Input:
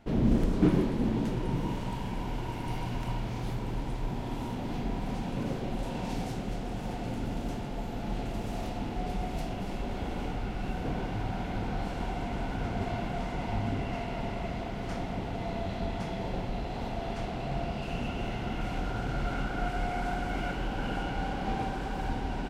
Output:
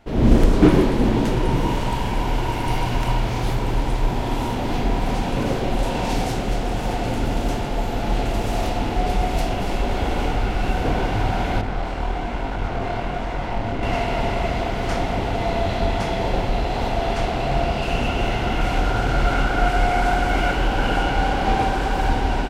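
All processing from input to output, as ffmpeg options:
ffmpeg -i in.wav -filter_complex "[0:a]asettb=1/sr,asplit=3[link_01][link_02][link_03];[link_01]atrim=end=11.614[link_04];[link_02]atrim=start=11.61:end=13.83,asetpts=PTS-STARTPTS,afade=type=in:duration=0.004:curve=qsin,afade=type=out:start_time=2.216:duration=0.004:curve=qsin,lowpass=frequency=3500:poles=1,aeval=exprs='clip(val(0),-1,0.0188)':channel_layout=same,flanger=delay=19:depth=7.2:speed=1.2[link_05];[link_03]atrim=start=13.826[link_06];[link_04][link_05]acrossfade=duration=0.004:curve1=hsin:curve2=qsin[link_07];[link_07][link_06]acrossfade=duration=0.004:curve1=qsin:curve2=hsin,equalizer=frequency=180:width=1.1:gain=-7.5,dynaudnorm=framelen=120:gausssize=3:maxgain=8.5dB,volume=5.5dB" out.wav

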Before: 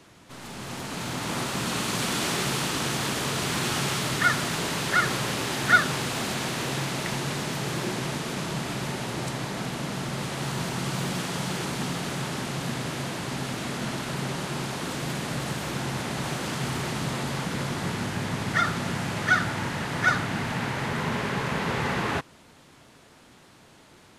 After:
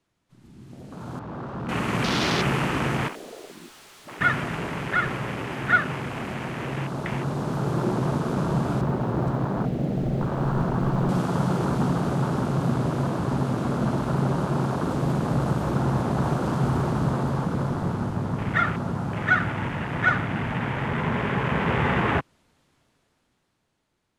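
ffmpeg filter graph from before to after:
ffmpeg -i in.wav -filter_complex "[0:a]asettb=1/sr,asplit=3[link_01][link_02][link_03];[link_01]atrim=end=1.194[link_04];[link_02]atrim=start=1.19:end=1.69,asetpts=PTS-STARTPTS,afade=type=in:duration=0.004:curve=qsin,afade=type=out:start_time=0.496:duration=0.004:curve=qsin,lowpass=2500,asoftclip=type=hard:threshold=-31.5dB[link_05];[link_03]atrim=start=1.686[link_06];[link_04][link_05]acrossfade=duration=0.004:curve1=hsin:curve2=qsin[link_07];[link_07][link_06]acrossfade=duration=0.004:curve1=qsin:curve2=hsin,asettb=1/sr,asplit=3[link_08][link_09][link_10];[link_08]atrim=end=3.084[link_11];[link_09]atrim=start=3.08:end=4.21,asetpts=PTS-STARTPTS,afade=type=in:duration=0.004:curve=qsin,afade=type=out:start_time=1.126:duration=0.004:curve=qsin,highpass=360,asoftclip=type=hard:threshold=-33dB[link_12];[link_10]atrim=start=4.206[link_13];[link_11][link_12]acrossfade=duration=0.004:curve1=hsin:curve2=qsin[link_14];[link_14][link_13]acrossfade=duration=0.004:curve1=qsin:curve2=hsin,asettb=1/sr,asplit=3[link_15][link_16][link_17];[link_15]atrim=end=8.814[link_18];[link_16]atrim=start=8.81:end=11.09,asetpts=PTS-STARTPTS,afade=type=in:duration=0.004:curve=qsin,afade=type=out:start_time=2.276:duration=0.004:curve=qsin,lowpass=frequency=2100:poles=1,acrusher=bits=6:mode=log:mix=0:aa=0.000001,asubboost=boost=3.5:cutoff=55[link_19];[link_17]atrim=start=11.086[link_20];[link_18][link_19]acrossfade=duration=0.004:curve1=hsin:curve2=qsin[link_21];[link_21][link_20]acrossfade=duration=0.004:curve1=qsin:curve2=hsin,afwtdn=0.0282,lowshelf=frequency=65:gain=10,dynaudnorm=framelen=240:gausssize=13:maxgain=14.5dB,volume=-7dB" out.wav

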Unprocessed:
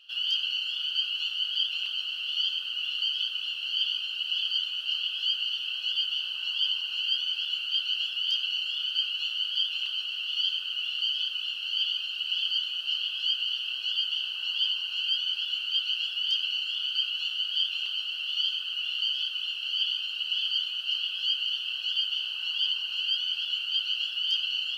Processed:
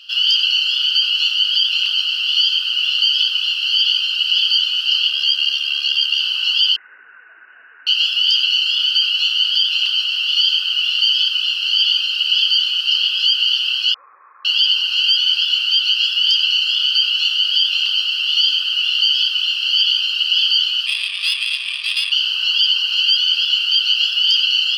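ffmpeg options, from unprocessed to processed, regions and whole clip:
ffmpeg -i in.wav -filter_complex "[0:a]asettb=1/sr,asplit=3[link_01][link_02][link_03];[link_01]atrim=end=5.094[link_04];[link_02]atrim=start=5.09:end=6.2,asetpts=PTS-STARTPTS,afade=type=in:duration=0.004:curve=qsin,afade=type=out:start_time=1.106:duration=0.004:curve=qsin,aeval=exprs='val(0)*sin(2*PI*36*n/s)':channel_layout=same,aecho=1:1:2.5:0.81,atrim=end_sample=48951[link_05];[link_03]atrim=start=6.196[link_06];[link_04][link_05]acrossfade=duration=0.004:curve1=hsin:curve2=qsin[link_07];[link_07][link_06]acrossfade=duration=0.004:curve1=qsin:curve2=hsin,asettb=1/sr,asplit=3[link_08][link_09][link_10];[link_08]atrim=end=6.764[link_11];[link_09]atrim=start=6.76:end=7.87,asetpts=PTS-STARTPTS,afade=type=in:duration=0.004:curve=qsin,afade=type=out:start_time=1.106:duration=0.004:curve=qsin,equalizer=frequency=640:width=2.8:gain=-7.5,lowpass=frequency=2600:width_type=q:width=0.5098,lowpass=frequency=2600:width_type=q:width=0.6013,lowpass=frequency=2600:width_type=q:width=0.9,lowpass=frequency=2600:width_type=q:width=2.563,afreqshift=-3000[link_12];[link_10]atrim=start=7.866[link_13];[link_11][link_12]acrossfade=duration=0.004:curve1=hsin:curve2=qsin[link_14];[link_14][link_13]acrossfade=duration=0.004:curve1=qsin:curve2=hsin,asettb=1/sr,asplit=3[link_15][link_16][link_17];[link_15]atrim=end=13.944[link_18];[link_16]atrim=start=13.94:end=14.45,asetpts=PTS-STARTPTS,afade=type=in:duration=0.004:curve=qsin,afade=type=out:start_time=0.506:duration=0.004:curve=qsin,equalizer=frequency=310:width_type=o:width=2.1:gain=-10.5,lowpass=frequency=2200:width_type=q:width=0.5098,lowpass=frequency=2200:width_type=q:width=0.6013,lowpass=frequency=2200:width_type=q:width=0.9,lowpass=frequency=2200:width_type=q:width=2.563,afreqshift=-2600[link_19];[link_17]atrim=start=14.446[link_20];[link_18][link_19]acrossfade=duration=0.004:curve1=hsin:curve2=qsin[link_21];[link_21][link_20]acrossfade=duration=0.004:curve1=qsin:curve2=hsin,asettb=1/sr,asplit=3[link_22][link_23][link_24];[link_22]atrim=end=20.864[link_25];[link_23]atrim=start=20.86:end=22.12,asetpts=PTS-STARTPTS,afade=type=in:duration=0.004:curve=qsin,afade=type=out:start_time=1.256:duration=0.004:curve=qsin,aeval=exprs='val(0)*sin(2*PI*310*n/s)':channel_layout=same,adynamicsmooth=sensitivity=4:basefreq=2700[link_26];[link_24]atrim=start=22.116[link_27];[link_25][link_26]acrossfade=duration=0.004:curve1=hsin:curve2=qsin[link_28];[link_28][link_27]acrossfade=duration=0.004:curve1=qsin:curve2=hsin,highpass=frequency=930:width=0.5412,highpass=frequency=930:width=1.3066,equalizer=frequency=5000:width=4.7:gain=13.5,alimiter=level_in=17.5dB:limit=-1dB:release=50:level=0:latency=1,volume=-4.5dB" out.wav

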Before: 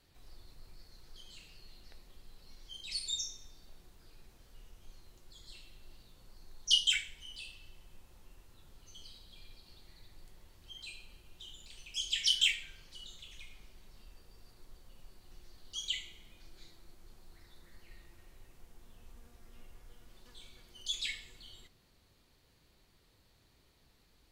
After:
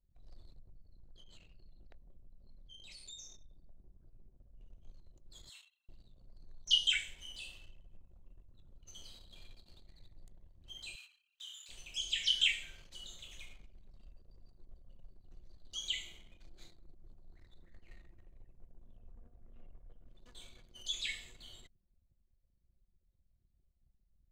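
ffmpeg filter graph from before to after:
ffmpeg -i in.wav -filter_complex "[0:a]asettb=1/sr,asplit=3[link_01][link_02][link_03];[link_01]atrim=end=0.594[link_04];[link_02]atrim=start=0.59:end=4.61,asetpts=PTS-STARTPTS,afade=type=in:duration=0.004:curve=qsin,afade=type=out:start_time=4.016:duration=0.004:curve=qsin,highshelf=frequency=2600:gain=-9.5,asplit=2[link_05][link_06];[link_06]adelay=21,volume=-11dB[link_07];[link_05][link_07]amix=inputs=2:normalize=0,atrim=end_sample=177282,acompressor=threshold=-50dB:ratio=2.5:attack=3.2:release=140:knee=1:detection=peak[link_08];[link_03]atrim=start=4.606[link_09];[link_04][link_08]acrossfade=duration=0.004:curve1=hsin:curve2=qsin[link_10];[link_10][link_09]acrossfade=duration=0.004:curve1=qsin:curve2=hsin,asettb=1/sr,asplit=3[link_11][link_12][link_13];[link_11]atrim=end=5.494[link_14];[link_12]atrim=start=5.49:end=5.89,asetpts=PTS-STARTPTS,afade=type=in:duration=0.004:curve=qsin,afade=type=out:start_time=0.396:duration=0.004:curve=qsin,highpass=frequency=970:width=0.5412,highpass=frequency=970:width=1.3066,bandreject=frequency=4700:width=5.3[link_15];[link_13]atrim=start=5.886[link_16];[link_14][link_15]acrossfade=duration=0.004:curve1=hsin:curve2=qsin[link_17];[link_17][link_16]acrossfade=duration=0.004:curve1=qsin:curve2=hsin,asettb=1/sr,asplit=3[link_18][link_19][link_20];[link_18]atrim=end=10.954[link_21];[link_19]atrim=start=10.95:end=11.69,asetpts=PTS-STARTPTS,afade=type=in:duration=0.004:curve=qsin,afade=type=out:start_time=0.736:duration=0.004:curve=qsin,highpass=frequency=1200:width=0.5412,highpass=frequency=1200:width=1.3066,asplit=2[link_22][link_23];[link_23]adelay=25,volume=-4dB[link_24];[link_22][link_24]amix=inputs=2:normalize=0,atrim=end_sample=32634[link_25];[link_20]atrim=start=11.686[link_26];[link_21][link_25]acrossfade=duration=0.004:curve1=hsin:curve2=qsin[link_27];[link_27][link_26]acrossfade=duration=0.004:curve1=qsin:curve2=hsin,asettb=1/sr,asplit=3[link_28][link_29][link_30];[link_28]atrim=end=18.984[link_31];[link_29]atrim=start=18.98:end=20.06,asetpts=PTS-STARTPTS,afade=type=in:duration=0.004:curve=qsin,afade=type=out:start_time=1.076:duration=0.004:curve=qsin,highshelf=frequency=2900:gain=-3,bandreject=frequency=60:width_type=h:width=6,bandreject=frequency=120:width_type=h:width=6,bandreject=frequency=180:width_type=h:width=6,bandreject=frequency=240:width_type=h:width=6,bandreject=frequency=300:width_type=h:width=6,bandreject=frequency=360:width_type=h:width=6,bandreject=frequency=420:width_type=h:width=6[link_32];[link_30]atrim=start=20.056[link_33];[link_31][link_32]acrossfade=duration=0.004:curve1=hsin:curve2=qsin[link_34];[link_34][link_33]acrossfade=duration=0.004:curve1=qsin:curve2=hsin,anlmdn=0.0000631,acrossover=split=4400[link_35][link_36];[link_36]acompressor=threshold=-49dB:ratio=4:attack=1:release=60[link_37];[link_35][link_37]amix=inputs=2:normalize=0,superequalizer=8b=1.58:14b=0.708:15b=1.58" out.wav

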